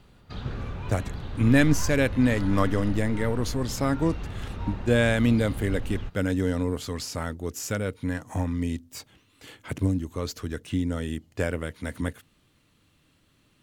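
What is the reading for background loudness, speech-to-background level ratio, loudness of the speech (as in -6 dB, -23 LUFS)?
-36.5 LUFS, 9.5 dB, -27.0 LUFS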